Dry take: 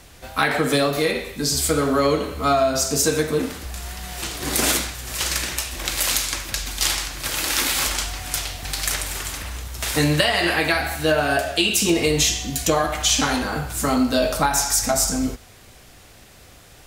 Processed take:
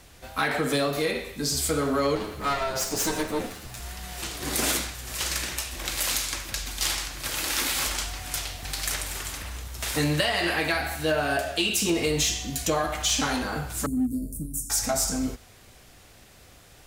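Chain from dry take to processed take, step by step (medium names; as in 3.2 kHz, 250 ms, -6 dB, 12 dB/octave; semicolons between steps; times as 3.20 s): 2.15–3.80 s: comb filter that takes the minimum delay 9.5 ms; 13.86–14.70 s: elliptic band-stop 280–8800 Hz, stop band 50 dB; in parallel at -5.5 dB: hard clipper -17.5 dBFS, distortion -11 dB; on the sum: trim -8.5 dB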